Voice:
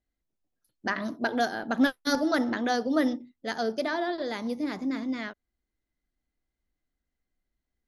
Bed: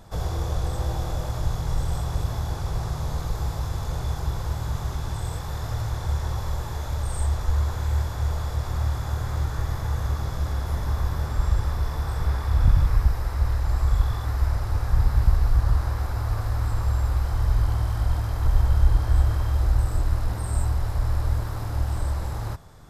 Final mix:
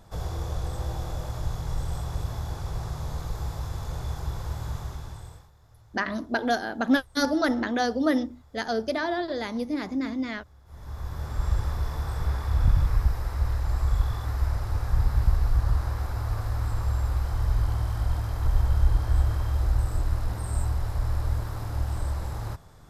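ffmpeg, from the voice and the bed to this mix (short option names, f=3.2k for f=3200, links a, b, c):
-filter_complex "[0:a]adelay=5100,volume=1.5dB[a];[1:a]volume=20dB,afade=t=out:st=4.7:d=0.81:silence=0.0707946,afade=t=in:st=10.65:d=0.88:silence=0.0595662[b];[a][b]amix=inputs=2:normalize=0"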